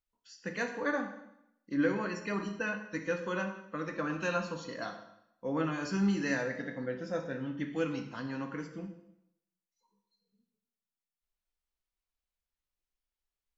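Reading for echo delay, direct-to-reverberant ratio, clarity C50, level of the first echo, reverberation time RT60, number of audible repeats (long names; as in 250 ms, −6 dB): no echo audible, 4.5 dB, 8.0 dB, no echo audible, 0.80 s, no echo audible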